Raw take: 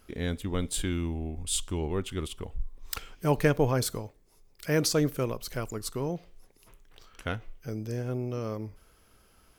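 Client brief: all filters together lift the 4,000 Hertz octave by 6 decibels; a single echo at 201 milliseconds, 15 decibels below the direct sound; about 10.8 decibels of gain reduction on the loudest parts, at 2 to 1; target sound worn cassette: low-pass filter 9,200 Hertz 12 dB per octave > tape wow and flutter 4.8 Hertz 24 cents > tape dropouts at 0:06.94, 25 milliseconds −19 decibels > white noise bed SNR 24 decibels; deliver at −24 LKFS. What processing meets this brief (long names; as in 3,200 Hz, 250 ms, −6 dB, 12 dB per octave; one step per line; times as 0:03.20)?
parametric band 4,000 Hz +7.5 dB
downward compressor 2 to 1, threshold −39 dBFS
low-pass filter 9,200 Hz 12 dB per octave
single-tap delay 201 ms −15 dB
tape wow and flutter 4.8 Hz 24 cents
tape dropouts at 0:06.94, 25 ms −19 dB
white noise bed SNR 24 dB
level +14.5 dB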